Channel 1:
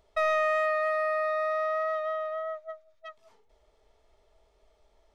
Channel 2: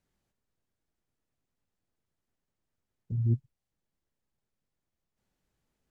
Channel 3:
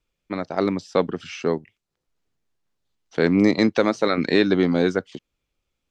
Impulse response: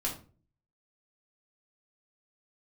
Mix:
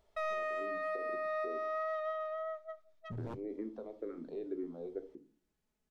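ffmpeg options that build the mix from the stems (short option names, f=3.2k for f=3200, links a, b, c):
-filter_complex "[0:a]volume=-7.5dB,asplit=2[a][b];[b]volume=-18dB[c];[1:a]aecho=1:1:4.7:0.51,aeval=exprs='0.0266*(abs(mod(val(0)/0.0266+3,4)-2)-1)':c=same,volume=-5.5dB[d];[2:a]acompressor=threshold=-20dB:ratio=6,bandpass=f=400:t=q:w=2.3:csg=0,asplit=2[e][f];[f]afreqshift=-2[g];[e][g]amix=inputs=2:normalize=1,volume=-14dB,asplit=2[h][i];[i]volume=-7dB[j];[3:a]atrim=start_sample=2205[k];[c][j]amix=inputs=2:normalize=0[l];[l][k]afir=irnorm=-1:irlink=0[m];[a][d][h][m]amix=inputs=4:normalize=0,alimiter=level_in=4.5dB:limit=-24dB:level=0:latency=1:release=318,volume=-4.5dB"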